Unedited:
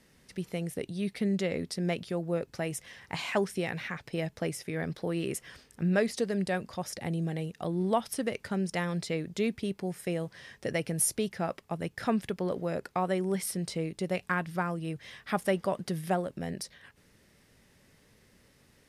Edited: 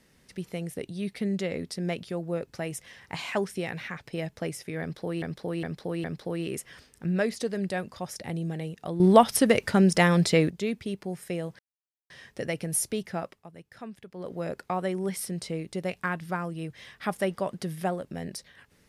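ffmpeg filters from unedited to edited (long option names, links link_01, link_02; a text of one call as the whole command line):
ffmpeg -i in.wav -filter_complex "[0:a]asplit=9[link_01][link_02][link_03][link_04][link_05][link_06][link_07][link_08][link_09];[link_01]atrim=end=5.222[link_10];[link_02]atrim=start=4.808:end=5.222[link_11];[link_03]atrim=start=4.808:end=5.222[link_12];[link_04]atrim=start=4.808:end=7.772[link_13];[link_05]atrim=start=7.768:end=9.272,asetpts=PTS-STARTPTS,volume=11dB[link_14];[link_06]atrim=start=9.268:end=10.36,asetpts=PTS-STARTPTS,afade=type=out:start_time=1.088:duration=0.004:curve=hsin,apad=pad_dur=0.51[link_15];[link_07]atrim=start=10.36:end=11.73,asetpts=PTS-STARTPTS,afade=type=in:duration=0.004:curve=hsin,afade=type=out:start_time=1.06:duration=0.31:silence=0.223872[link_16];[link_08]atrim=start=11.73:end=12.38,asetpts=PTS-STARTPTS,volume=-13dB[link_17];[link_09]atrim=start=12.38,asetpts=PTS-STARTPTS,afade=type=in:duration=0.31:silence=0.223872[link_18];[link_10][link_11]acrossfade=duration=0.004:curve1=hsin:curve2=hsin[link_19];[link_19][link_12]acrossfade=duration=0.004:curve1=hsin:curve2=hsin[link_20];[link_20][link_13]acrossfade=duration=0.004:curve1=hsin:curve2=hsin[link_21];[link_21][link_14]acrossfade=duration=0.004:curve1=hsin:curve2=hsin[link_22];[link_15][link_16][link_17][link_18]concat=n=4:v=0:a=1[link_23];[link_22][link_23]acrossfade=duration=0.004:curve1=hsin:curve2=hsin" out.wav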